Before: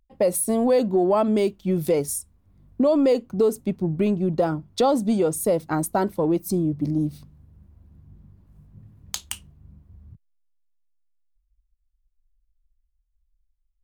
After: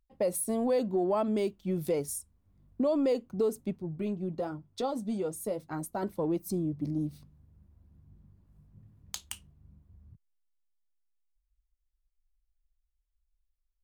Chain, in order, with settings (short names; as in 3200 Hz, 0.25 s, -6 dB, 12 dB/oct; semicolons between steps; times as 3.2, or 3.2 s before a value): 3.78–6.03 flange 1 Hz, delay 7.2 ms, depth 3.5 ms, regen -48%; gain -8.5 dB